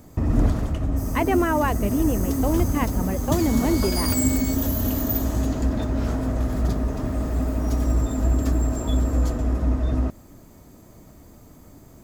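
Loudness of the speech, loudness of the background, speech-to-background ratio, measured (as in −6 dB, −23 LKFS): −25.0 LKFS, −24.5 LKFS, −0.5 dB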